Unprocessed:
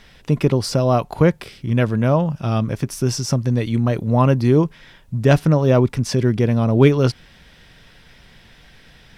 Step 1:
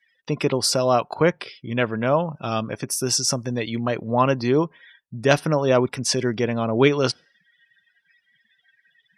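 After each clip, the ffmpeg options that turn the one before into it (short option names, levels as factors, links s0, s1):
-af "highpass=f=520:p=1,afftdn=nr=36:nf=-43,highshelf=f=5300:g=8.5,volume=1.19"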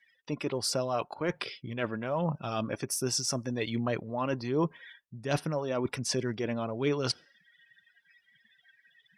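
-af "areverse,acompressor=threshold=0.0447:ratio=6,areverse,aphaser=in_gain=1:out_gain=1:delay=3.6:decay=0.3:speed=1.3:type=sinusoidal,volume=0.841"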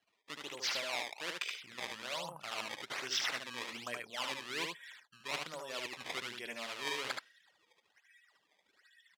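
-af "acrusher=samples=18:mix=1:aa=0.000001:lfo=1:lforange=28.8:lforate=1.2,bandpass=f=3000:t=q:w=1:csg=0,aecho=1:1:74:0.631"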